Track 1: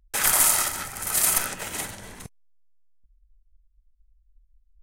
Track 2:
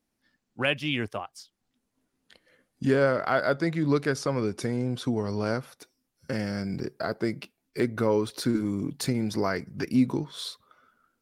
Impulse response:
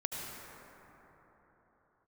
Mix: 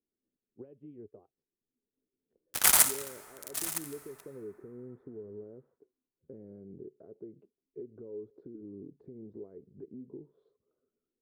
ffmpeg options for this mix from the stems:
-filter_complex "[0:a]highpass=440,acrusher=bits=2:mix=0:aa=0.5,adelay=2400,volume=-1dB,asplit=2[link_01][link_02];[link_02]volume=-22dB[link_03];[1:a]acompressor=threshold=-26dB:ratio=6,alimiter=level_in=0.5dB:limit=-24dB:level=0:latency=1:release=229,volume=-0.5dB,lowpass=frequency=410:width_type=q:width=4.9,volume=-17.5dB,asplit=2[link_04][link_05];[link_05]apad=whole_len=318752[link_06];[link_01][link_06]sidechaincompress=threshold=-60dB:ratio=6:attack=32:release=182[link_07];[2:a]atrim=start_sample=2205[link_08];[link_03][link_08]afir=irnorm=-1:irlink=0[link_09];[link_07][link_04][link_09]amix=inputs=3:normalize=0"

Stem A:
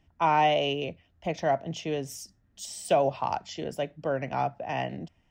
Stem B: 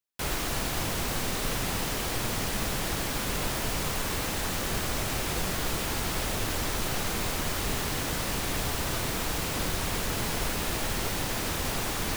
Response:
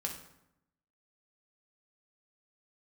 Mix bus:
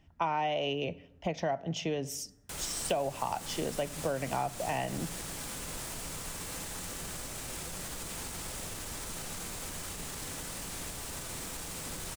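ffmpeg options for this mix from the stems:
-filter_complex "[0:a]volume=1.5dB,asplit=2[link_01][link_02];[link_02]volume=-16.5dB[link_03];[1:a]equalizer=frequency=8400:width_type=o:width=0.96:gain=9.5,alimiter=level_in=2.5dB:limit=-24dB:level=0:latency=1:release=130,volume=-2.5dB,adelay=2300,volume=-7.5dB,asplit=2[link_04][link_05];[link_05]volume=-5dB[link_06];[2:a]atrim=start_sample=2205[link_07];[link_03][link_06]amix=inputs=2:normalize=0[link_08];[link_08][link_07]afir=irnorm=-1:irlink=0[link_09];[link_01][link_04][link_09]amix=inputs=3:normalize=0,acompressor=threshold=-29dB:ratio=5"

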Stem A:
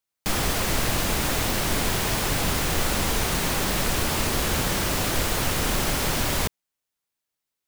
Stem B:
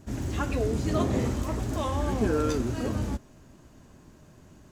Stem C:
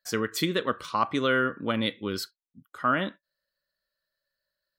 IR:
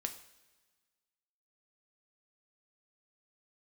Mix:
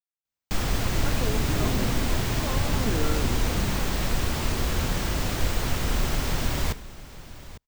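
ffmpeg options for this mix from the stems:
-filter_complex "[0:a]equalizer=frequency=11000:width_type=o:width=0.5:gain=-8,adelay=250,volume=-9dB,asplit=3[link_01][link_02][link_03];[link_02]volume=-4dB[link_04];[link_03]volume=-13dB[link_05];[1:a]highpass=frequency=87:width=0.5412,highpass=frequency=87:width=1.3066,adelay=650,volume=-5.5dB[link_06];[3:a]atrim=start_sample=2205[link_07];[link_04][link_07]afir=irnorm=-1:irlink=0[link_08];[link_05]aecho=0:1:851:1[link_09];[link_01][link_06][link_08][link_09]amix=inputs=4:normalize=0,lowshelf=frequency=150:gain=9"

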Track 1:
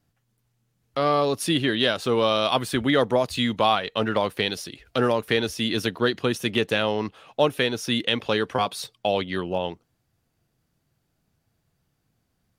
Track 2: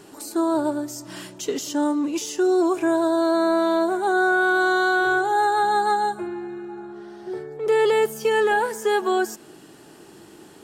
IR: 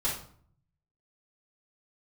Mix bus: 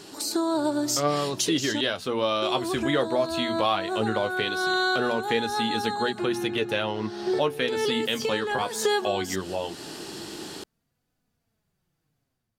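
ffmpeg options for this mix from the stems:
-filter_complex "[0:a]bandreject=frequency=60:width_type=h:width=6,bandreject=frequency=120:width_type=h:width=6,bandreject=frequency=180:width_type=h:width=6,bandreject=frequency=240:width_type=h:width=6,flanger=delay=4:depth=9.1:regen=45:speed=0.18:shape=sinusoidal,volume=-7dB,asplit=2[link_01][link_02];[1:a]equalizer=frequency=4400:width_type=o:width=1.2:gain=11,acompressor=threshold=-28dB:ratio=6,volume=0dB,asplit=3[link_03][link_04][link_05];[link_03]atrim=end=1.81,asetpts=PTS-STARTPTS,afade=type=out:start_time=1.806:duration=0.004:curve=hsin[link_06];[link_04]atrim=start=1.81:end=2.42,asetpts=PTS-STARTPTS,volume=0[link_07];[link_05]atrim=start=2.42,asetpts=PTS-STARTPTS,afade=type=in:duration=0.004:curve=hsin[link_08];[link_06][link_07][link_08]concat=n=3:v=0:a=1[link_09];[link_02]apad=whole_len=469077[link_10];[link_09][link_10]sidechaincompress=threshold=-37dB:ratio=8:attack=9.1:release=311[link_11];[link_01][link_11]amix=inputs=2:normalize=0,dynaudnorm=framelen=140:gausssize=5:maxgain=7dB"

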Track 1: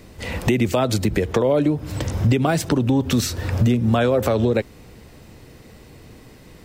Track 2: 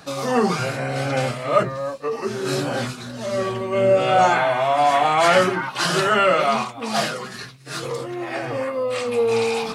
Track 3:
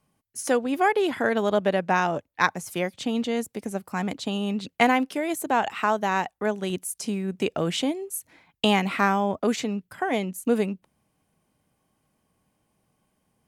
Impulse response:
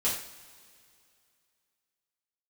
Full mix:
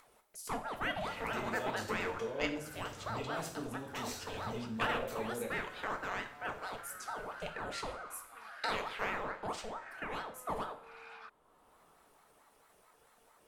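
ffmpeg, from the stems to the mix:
-filter_complex "[0:a]adelay=850,volume=-19dB,asplit=2[link_01][link_02];[link_02]volume=-9dB[link_03];[1:a]acompressor=threshold=-26dB:ratio=6,bandpass=frequency=1500:width_type=q:width=4.7:csg=0,adelay=1550,volume=-5dB[link_04];[2:a]aeval=exprs='val(0)*sin(2*PI*680*n/s+680*0.7/4.5*sin(2*PI*4.5*n/s))':channel_layout=same,volume=-13.5dB,asplit=3[link_05][link_06][link_07];[link_06]volume=-11dB[link_08];[link_07]apad=whole_len=498170[link_09];[link_04][link_09]sidechaincompress=threshold=-45dB:ratio=8:attack=16:release=420[link_10];[link_01][link_10]amix=inputs=2:normalize=0,alimiter=level_in=17dB:limit=-24dB:level=0:latency=1,volume=-17dB,volume=0dB[link_11];[3:a]atrim=start_sample=2205[link_12];[link_03][link_08]amix=inputs=2:normalize=0[link_13];[link_13][link_12]afir=irnorm=-1:irlink=0[link_14];[link_05][link_11][link_14]amix=inputs=3:normalize=0,equalizer=frequency=90:width=0.43:gain=-10,acompressor=mode=upward:threshold=-48dB:ratio=2.5"

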